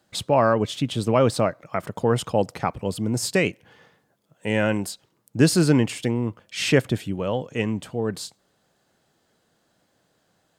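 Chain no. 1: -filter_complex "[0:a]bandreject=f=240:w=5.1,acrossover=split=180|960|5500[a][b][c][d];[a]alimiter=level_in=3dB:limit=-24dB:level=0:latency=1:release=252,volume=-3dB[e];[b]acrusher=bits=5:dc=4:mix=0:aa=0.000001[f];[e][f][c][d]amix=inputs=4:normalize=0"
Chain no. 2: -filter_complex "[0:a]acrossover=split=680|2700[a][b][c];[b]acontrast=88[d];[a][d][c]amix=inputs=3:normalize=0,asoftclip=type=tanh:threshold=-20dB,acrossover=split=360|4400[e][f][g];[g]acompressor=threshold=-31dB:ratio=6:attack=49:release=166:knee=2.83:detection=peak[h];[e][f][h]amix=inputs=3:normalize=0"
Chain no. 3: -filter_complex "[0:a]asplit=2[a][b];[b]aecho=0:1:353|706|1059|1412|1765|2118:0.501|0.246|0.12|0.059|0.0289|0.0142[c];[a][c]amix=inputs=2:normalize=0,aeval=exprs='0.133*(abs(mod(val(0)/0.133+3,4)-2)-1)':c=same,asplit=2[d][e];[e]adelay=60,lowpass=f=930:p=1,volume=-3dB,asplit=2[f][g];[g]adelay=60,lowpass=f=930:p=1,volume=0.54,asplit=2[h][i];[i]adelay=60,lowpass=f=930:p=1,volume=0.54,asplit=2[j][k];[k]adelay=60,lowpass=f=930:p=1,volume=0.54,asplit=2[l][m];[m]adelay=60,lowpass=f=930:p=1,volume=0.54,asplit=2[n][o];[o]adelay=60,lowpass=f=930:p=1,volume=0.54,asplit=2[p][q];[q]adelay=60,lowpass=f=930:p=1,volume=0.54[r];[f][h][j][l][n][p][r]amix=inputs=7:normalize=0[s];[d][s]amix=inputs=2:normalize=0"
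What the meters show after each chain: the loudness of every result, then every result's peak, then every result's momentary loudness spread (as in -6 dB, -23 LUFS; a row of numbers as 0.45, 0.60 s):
-24.5, -27.0, -24.0 LUFS; -5.0, -12.5, -12.0 dBFS; 12, 7, 10 LU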